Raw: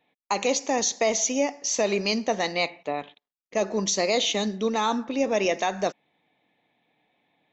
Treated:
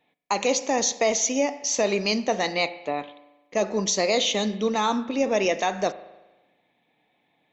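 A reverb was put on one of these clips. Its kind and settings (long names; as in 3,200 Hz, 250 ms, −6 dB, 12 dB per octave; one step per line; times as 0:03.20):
spring reverb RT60 1.1 s, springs 38 ms, chirp 40 ms, DRR 14 dB
level +1 dB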